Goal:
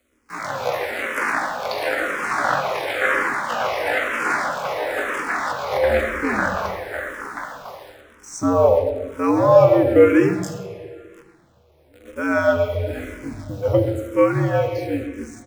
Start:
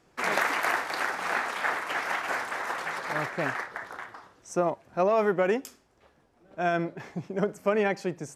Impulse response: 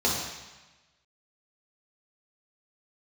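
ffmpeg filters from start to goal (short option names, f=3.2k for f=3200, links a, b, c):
-filter_complex "[0:a]equalizer=f=610:w=3.8:g=6,dynaudnorm=f=130:g=11:m=8.5dB,atempo=0.54,acrusher=bits=8:dc=4:mix=0:aa=0.000001,afreqshift=-78,asplit=2[a][b];[b]adelay=130,highpass=300,lowpass=3.4k,asoftclip=type=hard:threshold=-13dB,volume=-10dB[c];[a][c]amix=inputs=2:normalize=0,asplit=2[d][e];[1:a]atrim=start_sample=2205,asetrate=25137,aresample=44100[f];[e][f]afir=irnorm=-1:irlink=0,volume=-21dB[g];[d][g]amix=inputs=2:normalize=0,asplit=2[h][i];[i]afreqshift=-1[j];[h][j]amix=inputs=2:normalize=1"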